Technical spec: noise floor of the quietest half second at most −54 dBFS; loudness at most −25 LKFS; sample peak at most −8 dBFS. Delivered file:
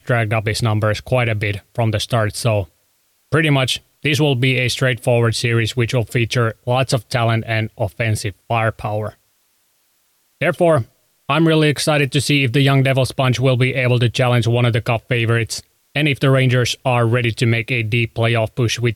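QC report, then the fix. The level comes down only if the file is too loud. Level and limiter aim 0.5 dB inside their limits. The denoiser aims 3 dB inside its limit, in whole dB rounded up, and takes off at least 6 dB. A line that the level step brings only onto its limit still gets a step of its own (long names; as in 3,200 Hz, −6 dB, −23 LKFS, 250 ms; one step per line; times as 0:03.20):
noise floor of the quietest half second −62 dBFS: in spec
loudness −17.5 LKFS: out of spec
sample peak −6.0 dBFS: out of spec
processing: level −8 dB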